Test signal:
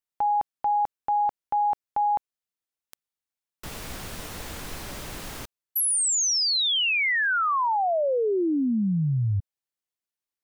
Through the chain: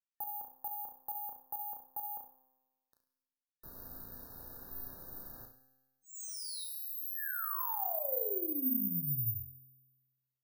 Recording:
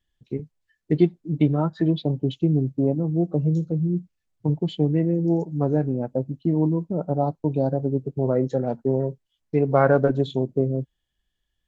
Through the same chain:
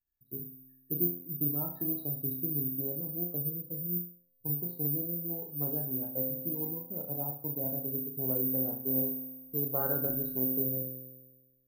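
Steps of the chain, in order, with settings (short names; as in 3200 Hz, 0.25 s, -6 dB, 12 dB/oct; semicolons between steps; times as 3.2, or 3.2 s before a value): high shelf 2200 Hz -9.5 dB; resonator 130 Hz, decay 1.3 s, harmonics all, mix 80%; flutter echo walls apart 5.9 m, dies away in 0.4 s; careless resampling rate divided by 3×, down filtered, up zero stuff; FFT band-reject 1800–3700 Hz; gain -5 dB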